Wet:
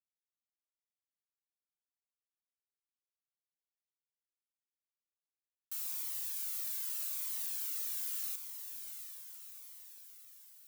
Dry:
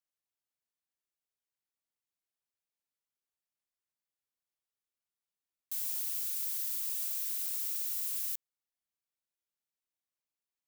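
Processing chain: send-on-delta sampling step -40 dBFS; steep high-pass 860 Hz 48 dB/octave; on a send: echo that smears into a reverb 744 ms, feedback 55%, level -8 dB; on the sum: Shepard-style flanger falling 0.82 Hz; trim +1 dB

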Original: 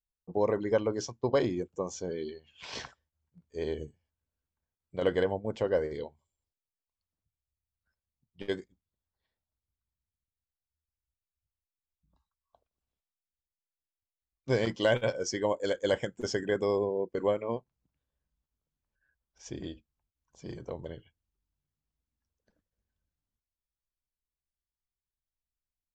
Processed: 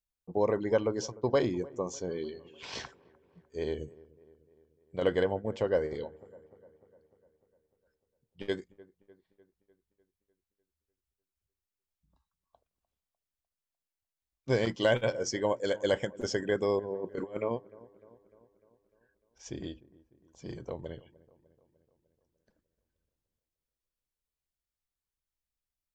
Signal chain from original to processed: 16.79–17.51 s: compressor with a negative ratio -34 dBFS, ratio -0.5; on a send: feedback echo behind a low-pass 300 ms, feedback 57%, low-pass 1.4 kHz, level -21 dB

